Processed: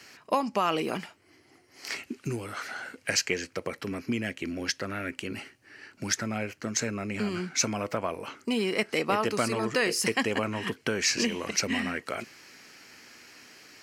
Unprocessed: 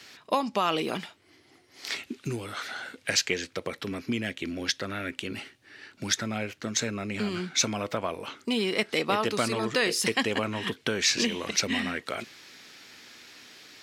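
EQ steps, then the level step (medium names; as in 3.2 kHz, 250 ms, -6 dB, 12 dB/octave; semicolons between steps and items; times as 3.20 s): peaking EQ 3.6 kHz -14.5 dB 0.26 oct; 0.0 dB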